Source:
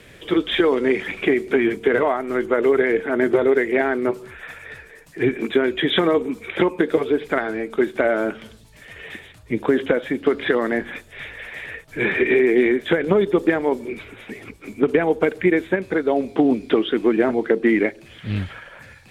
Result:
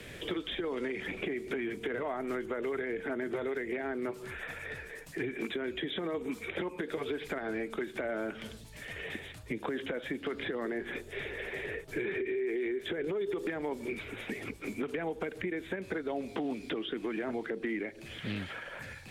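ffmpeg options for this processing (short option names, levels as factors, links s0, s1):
-filter_complex "[0:a]asettb=1/sr,asplit=3[s0][s1][s2];[s0]atrim=end=10.654[s3];[s1]atrim=start=10.65:end=13.47,asetpts=PTS-STARTPTS,afade=t=in:d=0.004:c=qsin,afade=t=out:st=2.816:d=0.004:c=qsin,equalizer=f=390:t=o:w=0.35:g=14.5[s4];[s2]atrim=start=13.466[s5];[s3][s4]acrossfade=d=0.004:c1=hsin:c2=qsin[s6];[s6][s5]acrossfade=d=0.004:c1=qsin:c2=hsin,equalizer=f=1100:w=1.5:g=-2.5,alimiter=limit=0.168:level=0:latency=1:release=145,acrossover=split=190|810[s7][s8][s9];[s7]acompressor=threshold=0.00398:ratio=4[s10];[s8]acompressor=threshold=0.0141:ratio=4[s11];[s9]acompressor=threshold=0.01:ratio=4[s12];[s10][s11][s12]amix=inputs=3:normalize=0"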